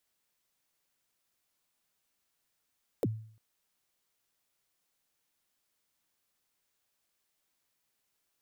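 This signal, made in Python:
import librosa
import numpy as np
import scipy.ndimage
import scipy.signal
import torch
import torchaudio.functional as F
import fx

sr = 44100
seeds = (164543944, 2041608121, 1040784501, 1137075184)

y = fx.drum_kick(sr, seeds[0], length_s=0.35, level_db=-23.5, start_hz=590.0, end_hz=110.0, sweep_ms=38.0, decay_s=0.54, click=True)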